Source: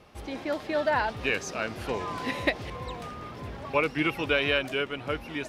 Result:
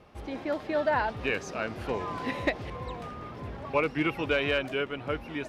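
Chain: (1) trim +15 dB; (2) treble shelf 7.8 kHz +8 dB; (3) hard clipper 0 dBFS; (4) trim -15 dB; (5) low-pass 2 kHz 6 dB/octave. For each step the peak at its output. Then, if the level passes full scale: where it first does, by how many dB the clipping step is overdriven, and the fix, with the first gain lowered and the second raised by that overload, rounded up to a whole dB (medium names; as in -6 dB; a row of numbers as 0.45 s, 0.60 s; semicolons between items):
+3.5 dBFS, +4.5 dBFS, 0.0 dBFS, -15.0 dBFS, -15.5 dBFS; step 1, 4.5 dB; step 1 +10 dB, step 4 -10 dB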